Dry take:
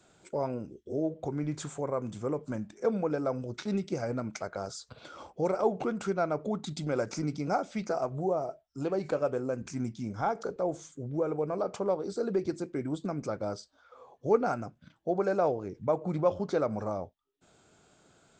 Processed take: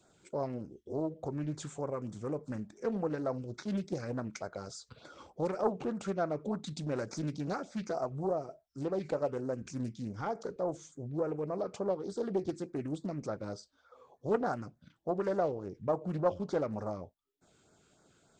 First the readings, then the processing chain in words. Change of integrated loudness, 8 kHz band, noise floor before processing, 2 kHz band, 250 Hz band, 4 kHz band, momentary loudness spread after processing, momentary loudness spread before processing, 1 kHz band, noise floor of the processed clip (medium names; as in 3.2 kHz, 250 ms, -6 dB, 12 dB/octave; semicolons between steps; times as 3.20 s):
-4.0 dB, -4.0 dB, -66 dBFS, -4.5 dB, -3.0 dB, -4.0 dB, 10 LU, 9 LU, -5.0 dB, -72 dBFS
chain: LFO notch sine 3.4 Hz 640–3000 Hz; loudspeaker Doppler distortion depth 0.37 ms; trim -3 dB